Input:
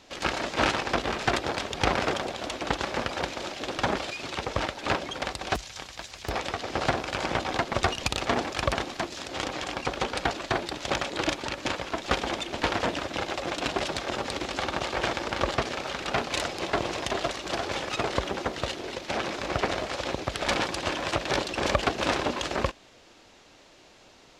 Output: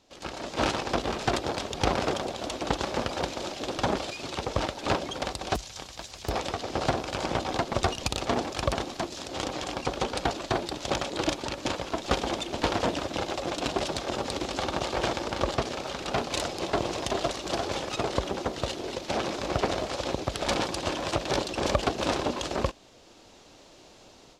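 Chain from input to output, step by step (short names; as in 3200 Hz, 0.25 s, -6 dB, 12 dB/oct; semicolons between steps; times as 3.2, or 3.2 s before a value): bell 1900 Hz -7 dB 1.4 oct; AGC gain up to 11.5 dB; gain -8 dB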